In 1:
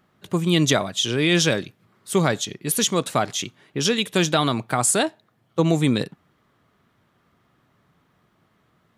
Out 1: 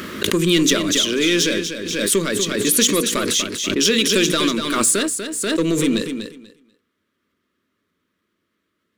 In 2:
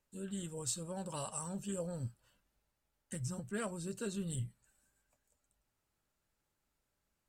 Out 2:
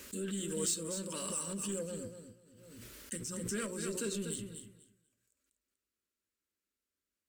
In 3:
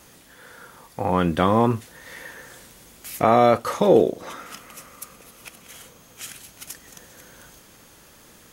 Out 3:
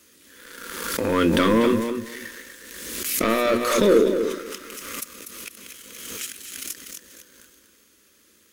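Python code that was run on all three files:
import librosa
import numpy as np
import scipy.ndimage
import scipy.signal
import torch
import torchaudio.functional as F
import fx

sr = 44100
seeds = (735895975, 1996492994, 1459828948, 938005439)

p1 = scipy.signal.sosfilt(scipy.signal.butter(2, 74.0, 'highpass', fs=sr, output='sos'), x)
p2 = fx.hum_notches(p1, sr, base_hz=60, count=8)
p3 = fx.leveller(p2, sr, passes=2)
p4 = fx.rider(p3, sr, range_db=4, speed_s=2.0)
p5 = fx.fixed_phaser(p4, sr, hz=320.0, stages=4)
p6 = p5 + fx.echo_feedback(p5, sr, ms=243, feedback_pct=18, wet_db=-8.0, dry=0)
p7 = fx.pre_swell(p6, sr, db_per_s=37.0)
y = p7 * 10.0 ** (-1.0 / 20.0)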